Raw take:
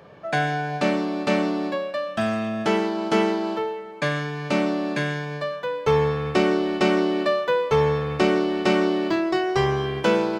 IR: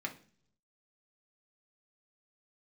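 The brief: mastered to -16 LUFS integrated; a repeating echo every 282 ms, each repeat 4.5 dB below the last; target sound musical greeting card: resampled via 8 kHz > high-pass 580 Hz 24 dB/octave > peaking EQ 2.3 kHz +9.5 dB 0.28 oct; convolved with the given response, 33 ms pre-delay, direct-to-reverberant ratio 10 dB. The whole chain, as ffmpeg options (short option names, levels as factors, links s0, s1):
-filter_complex "[0:a]aecho=1:1:282|564|846|1128|1410|1692|1974|2256|2538:0.596|0.357|0.214|0.129|0.0772|0.0463|0.0278|0.0167|0.01,asplit=2[s0][s1];[1:a]atrim=start_sample=2205,adelay=33[s2];[s1][s2]afir=irnorm=-1:irlink=0,volume=0.251[s3];[s0][s3]amix=inputs=2:normalize=0,aresample=8000,aresample=44100,highpass=f=580:w=0.5412,highpass=f=580:w=1.3066,equalizer=f=2300:t=o:w=0.28:g=9.5,volume=2.37"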